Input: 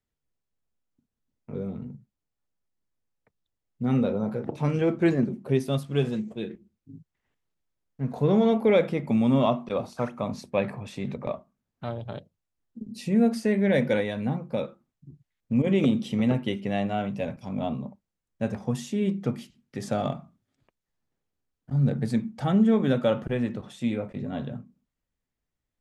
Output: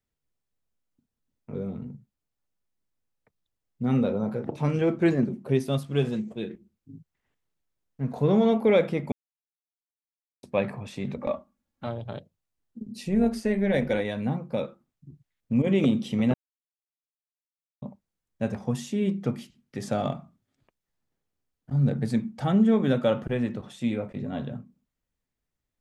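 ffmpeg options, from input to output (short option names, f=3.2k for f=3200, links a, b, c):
-filter_complex "[0:a]asettb=1/sr,asplit=3[a][b][c];[a]atrim=end=11.174[d];[b]atrim=start=11.17:end=11.87,asetpts=PTS-STARTPTS,afade=t=in:d=0.004:c=qsin,afade=t=out:st=0.696:d=0.004:c=qsin,aecho=1:1:3.6:0.65,atrim=end_sample=30870[e];[c]atrim=start=11.866[f];[d][e]acrossfade=d=0.004:c1=hsin:c2=qsin[g];[g][f]acrossfade=d=0.004:c1=qsin:c2=hsin,asettb=1/sr,asplit=3[h][i][j];[h]atrim=end=13.034[k];[i]atrim=start=13.03:end=14.05,asetpts=PTS-STARTPTS,afade=t=in:d=0.004:c=qsin,afade=t=out:st=1.016:d=0.004:c=qsin,tremolo=f=190:d=0.4[l];[j]atrim=start=14.046[m];[k][l]acrossfade=d=0.004:c1=hsin:c2=qsin[n];[n][m]acrossfade=d=0.004:c1=qsin:c2=hsin,asplit=5[o][p][q][r][s];[o]atrim=end=9.12,asetpts=PTS-STARTPTS,afade=t=out:st=9.116:d=0.004:c=hsin[t];[p]atrim=start=9.12:end=10.43,asetpts=PTS-STARTPTS,volume=0[u];[q]atrim=start=10.43:end=16.34,asetpts=PTS-STARTPTS,afade=t=in:d=0.004:c=hsin,afade=t=out:st=5.906:d=0.004:c=hsin[v];[r]atrim=start=16.34:end=17.82,asetpts=PTS-STARTPTS,volume=0[w];[s]atrim=start=17.82,asetpts=PTS-STARTPTS,afade=t=in:d=0.004:c=hsin[x];[t][u][v][w][x]concat=n=5:v=0:a=1"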